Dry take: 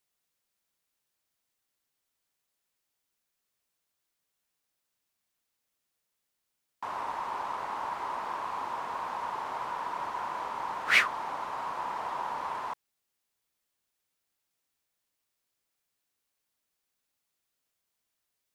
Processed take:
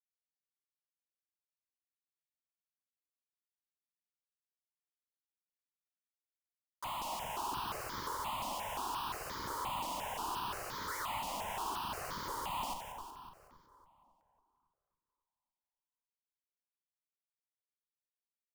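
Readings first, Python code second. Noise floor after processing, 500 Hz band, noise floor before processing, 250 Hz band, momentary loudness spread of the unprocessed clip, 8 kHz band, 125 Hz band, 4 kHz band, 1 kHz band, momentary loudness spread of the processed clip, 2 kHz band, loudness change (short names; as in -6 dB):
under -85 dBFS, -4.0 dB, -83 dBFS, 0.0 dB, 11 LU, +4.5 dB, +5.0 dB, -3.0 dB, -6.0 dB, 5 LU, -13.5 dB, -7.0 dB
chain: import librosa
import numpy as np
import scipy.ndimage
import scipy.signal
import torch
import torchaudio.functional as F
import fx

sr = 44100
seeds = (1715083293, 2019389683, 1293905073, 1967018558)

p1 = fx.env_lowpass_down(x, sr, base_hz=1500.0, full_db=-31.0)
p2 = fx.highpass(p1, sr, hz=190.0, slope=6)
p3 = fx.low_shelf(p2, sr, hz=280.0, db=-5.0)
p4 = fx.schmitt(p3, sr, flips_db=-46.0)
p5 = p4 + fx.echo_split(p4, sr, split_hz=1300.0, low_ms=276, high_ms=185, feedback_pct=52, wet_db=-6.0, dry=0)
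p6 = fx.phaser_held(p5, sr, hz=5.7, low_hz=420.0, high_hz=2700.0)
y = p6 * librosa.db_to_amplitude(2.5)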